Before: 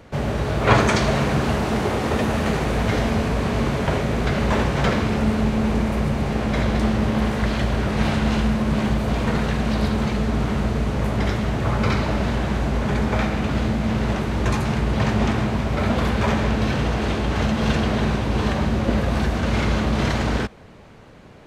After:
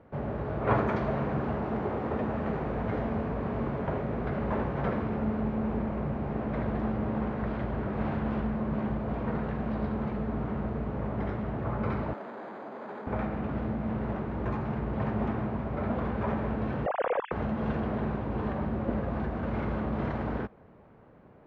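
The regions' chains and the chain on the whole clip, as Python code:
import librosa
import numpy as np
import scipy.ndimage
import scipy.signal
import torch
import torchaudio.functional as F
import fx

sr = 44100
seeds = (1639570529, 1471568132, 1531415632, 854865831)

y = fx.chain(x, sr, fx.doubler(ms=40.0, db=-11.0),
    fx.doppler_dist(depth_ms=0.38), at=(5.67, 8.69))
y = fx.chain(y, sr, fx.bessel_highpass(hz=390.0, order=4),
    fx.resample_bad(factor=8, down='filtered', up='hold'),
    fx.transformer_sat(knee_hz=1200.0), at=(12.13, 13.07))
y = fx.chain(y, sr, fx.sine_speech(),
    fx.low_shelf(hz=200.0, db=11.0), at=(16.86, 17.32))
y = scipy.signal.sosfilt(scipy.signal.butter(2, 1300.0, 'lowpass', fs=sr, output='sos'), y)
y = fx.low_shelf(y, sr, hz=82.0, db=-8.0)
y = y * librosa.db_to_amplitude(-8.0)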